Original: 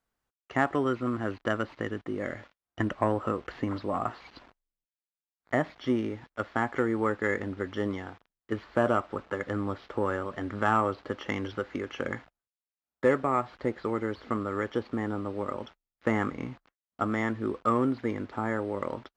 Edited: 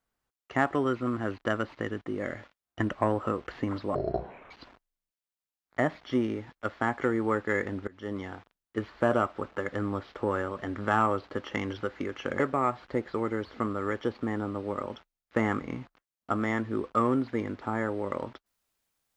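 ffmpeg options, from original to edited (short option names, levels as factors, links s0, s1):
-filter_complex "[0:a]asplit=5[s0][s1][s2][s3][s4];[s0]atrim=end=3.954[s5];[s1]atrim=start=3.95:end=4.25,asetpts=PTS-STARTPTS,asetrate=23814,aresample=44100[s6];[s2]atrim=start=4.246:end=7.62,asetpts=PTS-STARTPTS,afade=t=out:st=3.37:d=0.004:c=hsin:silence=0.0749894[s7];[s3]atrim=start=7.62:end=12.142,asetpts=PTS-STARTPTS,afade=t=in:d=0.42:silence=0.0749894[s8];[s4]atrim=start=13.098[s9];[s5][s6]acrossfade=d=0.004:c1=hsin:c2=hsin[s10];[s7][s8]concat=n=2:v=0:a=1[s11];[s10][s11]acrossfade=d=0.004:c1=hsin:c2=hsin[s12];[s12][s9]acrossfade=d=0.004:c1=hsin:c2=hsin"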